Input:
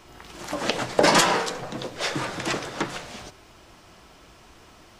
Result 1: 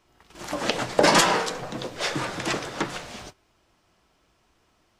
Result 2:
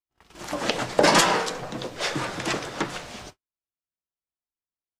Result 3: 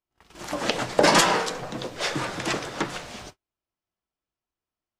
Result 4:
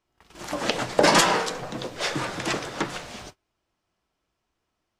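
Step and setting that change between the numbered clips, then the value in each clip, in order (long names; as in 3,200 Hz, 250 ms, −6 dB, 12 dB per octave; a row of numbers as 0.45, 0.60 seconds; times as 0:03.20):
noise gate, range: −15, −55, −42, −28 decibels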